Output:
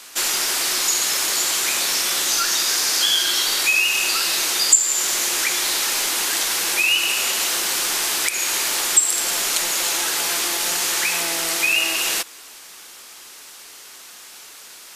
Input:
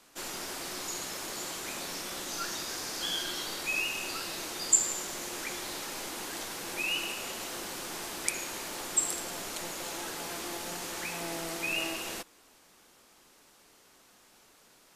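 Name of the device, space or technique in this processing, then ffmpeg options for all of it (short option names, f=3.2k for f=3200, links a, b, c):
mastering chain: -af "equalizer=f=390:t=o:w=0.57:g=3.5,acompressor=threshold=-37dB:ratio=2.5,asoftclip=type=tanh:threshold=-16.5dB,tiltshelf=f=830:g=-9,alimiter=level_in=13.5dB:limit=-1dB:release=50:level=0:latency=1,volume=-1dB"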